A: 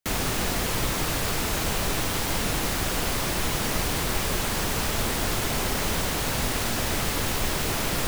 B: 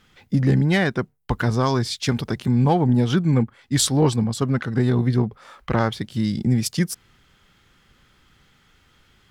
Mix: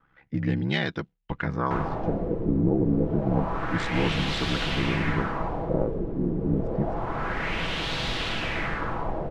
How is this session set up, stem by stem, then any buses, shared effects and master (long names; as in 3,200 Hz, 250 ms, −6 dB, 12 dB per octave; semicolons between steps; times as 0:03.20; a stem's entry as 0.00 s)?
−3.5 dB, 1.65 s, no send, no processing
−6.0 dB, 0.00 s, no send, parametric band 6,700 Hz +5.5 dB; ring modulation 34 Hz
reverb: not used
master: comb filter 6.1 ms, depth 31%; auto-filter low-pass sine 0.28 Hz 370–3,600 Hz